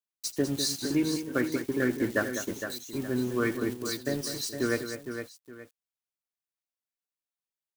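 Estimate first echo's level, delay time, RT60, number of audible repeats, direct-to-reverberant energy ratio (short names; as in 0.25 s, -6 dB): -18.0 dB, 82 ms, none, 4, none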